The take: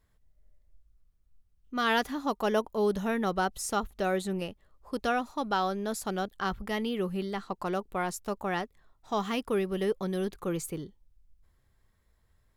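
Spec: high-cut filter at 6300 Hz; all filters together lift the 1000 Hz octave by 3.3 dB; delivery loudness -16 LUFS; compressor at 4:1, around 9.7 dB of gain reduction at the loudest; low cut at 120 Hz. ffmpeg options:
-af "highpass=120,lowpass=6.3k,equalizer=f=1k:t=o:g=4.5,acompressor=threshold=-33dB:ratio=4,volume=21dB"

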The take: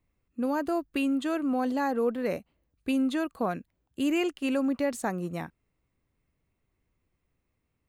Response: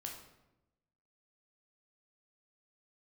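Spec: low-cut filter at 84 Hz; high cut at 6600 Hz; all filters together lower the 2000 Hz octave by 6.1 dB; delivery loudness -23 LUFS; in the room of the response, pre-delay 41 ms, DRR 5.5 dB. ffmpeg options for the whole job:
-filter_complex "[0:a]highpass=84,lowpass=6.6k,equalizer=f=2k:t=o:g=-8.5,asplit=2[a][b];[1:a]atrim=start_sample=2205,adelay=41[c];[b][c]afir=irnorm=-1:irlink=0,volume=-3dB[d];[a][d]amix=inputs=2:normalize=0,volume=5.5dB"

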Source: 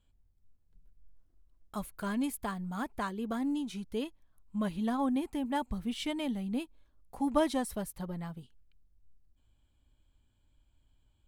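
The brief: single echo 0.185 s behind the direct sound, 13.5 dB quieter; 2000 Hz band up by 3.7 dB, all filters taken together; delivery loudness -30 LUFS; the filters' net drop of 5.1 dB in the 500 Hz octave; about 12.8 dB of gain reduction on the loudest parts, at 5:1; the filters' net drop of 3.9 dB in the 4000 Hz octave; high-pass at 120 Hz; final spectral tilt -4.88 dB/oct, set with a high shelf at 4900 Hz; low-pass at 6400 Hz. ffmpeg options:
-af "highpass=120,lowpass=6.4k,equalizer=f=500:t=o:g=-7,equalizer=f=2k:t=o:g=7.5,equalizer=f=4k:t=o:g=-6.5,highshelf=f=4.9k:g=-5.5,acompressor=threshold=-39dB:ratio=5,aecho=1:1:185:0.211,volume=13dB"

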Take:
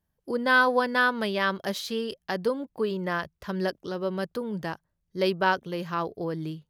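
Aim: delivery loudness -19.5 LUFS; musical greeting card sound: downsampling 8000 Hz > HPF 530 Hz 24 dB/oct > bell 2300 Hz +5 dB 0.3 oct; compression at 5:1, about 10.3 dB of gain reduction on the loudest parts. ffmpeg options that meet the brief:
-af "acompressor=threshold=-29dB:ratio=5,aresample=8000,aresample=44100,highpass=f=530:w=0.5412,highpass=f=530:w=1.3066,equalizer=f=2.3k:t=o:w=0.3:g=5,volume=17.5dB"

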